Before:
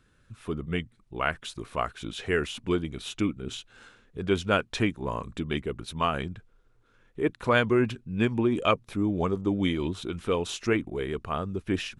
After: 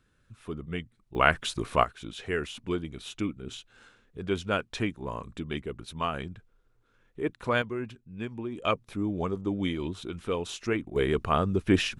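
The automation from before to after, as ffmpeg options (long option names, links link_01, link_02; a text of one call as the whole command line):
ffmpeg -i in.wav -af "asetnsamples=nb_out_samples=441:pad=0,asendcmd='1.15 volume volume 6dB;1.84 volume volume -4dB;7.62 volume volume -11dB;8.64 volume volume -3.5dB;10.96 volume volume 5.5dB',volume=-4.5dB" out.wav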